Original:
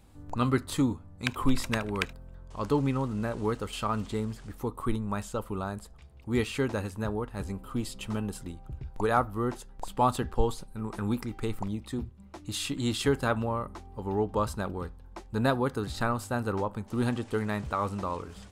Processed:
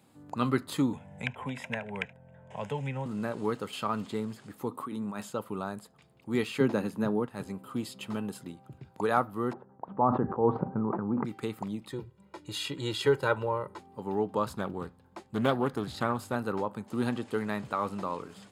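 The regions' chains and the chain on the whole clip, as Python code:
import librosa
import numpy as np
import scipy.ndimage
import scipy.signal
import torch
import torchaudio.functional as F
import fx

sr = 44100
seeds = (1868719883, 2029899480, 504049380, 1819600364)

y = fx.chain(x, sr, fx.lowpass(hz=5200.0, slope=12),
    fx.fixed_phaser(hz=1200.0, stages=6),
    fx.band_squash(depth_pct=70), at=(0.93, 3.06))
y = fx.chain(y, sr, fx.highpass(hz=170.0, slope=6),
    fx.over_compress(threshold_db=-36.0, ratio=-1.0),
    fx.peak_eq(hz=250.0, db=7.0, octaves=0.33), at=(4.71, 5.3))
y = fx.chain(y, sr, fx.highpass(hz=130.0, slope=24),
    fx.low_shelf(hz=400.0, db=9.0),
    fx.notch(hz=7900.0, q=13.0), at=(6.6, 7.26))
y = fx.chain(y, sr, fx.lowpass(hz=1200.0, slope=24),
    fx.sustainer(db_per_s=20.0), at=(9.53, 11.25))
y = fx.chain(y, sr, fx.high_shelf(hz=6700.0, db=-7.0),
    fx.comb(ms=2.1, depth=0.75), at=(11.91, 13.79))
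y = fx.chain(y, sr, fx.peak_eq(hz=62.0, db=12.0, octaves=0.96),
    fx.doppler_dist(depth_ms=0.38), at=(14.47, 16.36))
y = scipy.signal.sosfilt(scipy.signal.butter(4, 130.0, 'highpass', fs=sr, output='sos'), y)
y = fx.notch(y, sr, hz=5800.0, q=8.3)
y = fx.dynamic_eq(y, sr, hz=8200.0, q=2.3, threshold_db=-59.0, ratio=4.0, max_db=-5)
y = F.gain(torch.from_numpy(y), -1.0).numpy()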